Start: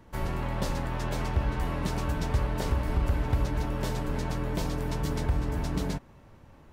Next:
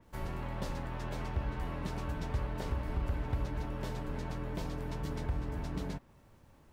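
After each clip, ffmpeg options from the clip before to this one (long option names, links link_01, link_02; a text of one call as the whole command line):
ffmpeg -i in.wav -af "acrusher=bits=10:mix=0:aa=0.000001,adynamicequalizer=threshold=0.002:dfrequency=4500:dqfactor=0.7:tfrequency=4500:tqfactor=0.7:attack=5:release=100:ratio=0.375:range=2.5:mode=cutabove:tftype=highshelf,volume=-7.5dB" out.wav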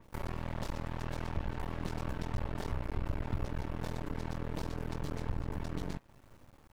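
ffmpeg -i in.wav -filter_complex "[0:a]asplit=2[link_01][link_02];[link_02]acompressor=threshold=-41dB:ratio=6,volume=-1dB[link_03];[link_01][link_03]amix=inputs=2:normalize=0,aeval=exprs='max(val(0),0)':channel_layout=same" out.wav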